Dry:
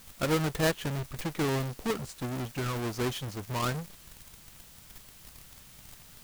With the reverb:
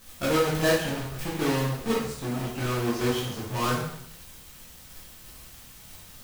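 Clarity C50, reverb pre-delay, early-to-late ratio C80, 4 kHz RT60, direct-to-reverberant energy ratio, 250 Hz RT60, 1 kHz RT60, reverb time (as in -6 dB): 2.5 dB, 5 ms, 6.0 dB, 0.65 s, -6.5 dB, 0.70 s, 0.70 s, 0.70 s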